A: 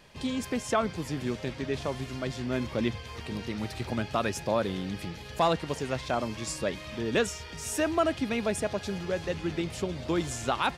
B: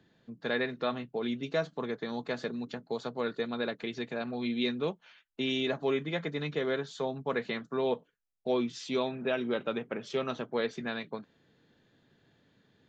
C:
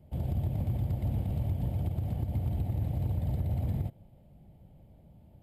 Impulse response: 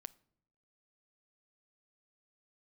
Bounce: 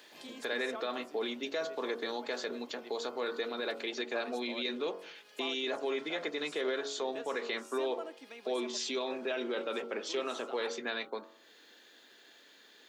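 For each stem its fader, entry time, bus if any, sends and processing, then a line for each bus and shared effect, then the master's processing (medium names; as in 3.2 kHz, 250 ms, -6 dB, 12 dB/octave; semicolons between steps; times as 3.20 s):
-13.0 dB, 0.00 s, send -5 dB, auto duck -13 dB, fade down 1.10 s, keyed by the second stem
+3.0 dB, 0.00 s, no send, treble shelf 4.7 kHz +8.5 dB; de-hum 46.66 Hz, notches 32; peak limiter -27.5 dBFS, peak gain reduction 10 dB
-11.0 dB, 0.00 s, no send, compression, threshold -33 dBFS, peak gain reduction 7 dB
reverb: on, pre-delay 7 ms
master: high-pass 300 Hz 24 dB/octave; tape noise reduction on one side only encoder only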